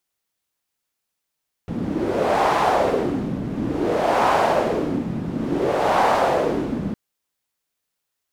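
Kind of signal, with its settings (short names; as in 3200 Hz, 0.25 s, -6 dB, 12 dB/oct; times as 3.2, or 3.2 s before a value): wind-like swept noise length 5.26 s, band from 200 Hz, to 820 Hz, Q 2.4, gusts 3, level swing 8 dB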